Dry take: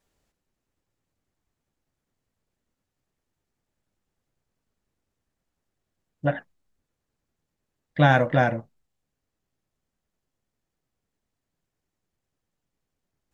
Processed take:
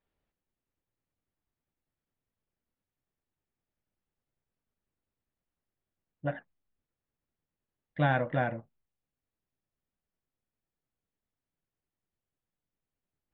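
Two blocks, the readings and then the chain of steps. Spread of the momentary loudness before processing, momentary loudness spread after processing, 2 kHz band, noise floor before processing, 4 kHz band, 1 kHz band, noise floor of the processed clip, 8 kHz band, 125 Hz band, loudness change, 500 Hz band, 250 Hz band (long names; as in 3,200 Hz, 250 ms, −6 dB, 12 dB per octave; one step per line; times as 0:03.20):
17 LU, 17 LU, −9.0 dB, −84 dBFS, −12.0 dB, −9.0 dB, below −85 dBFS, can't be measured, −9.0 dB, −9.0 dB, −9.0 dB, −9.0 dB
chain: low-pass filter 3,500 Hz 24 dB per octave
level −9 dB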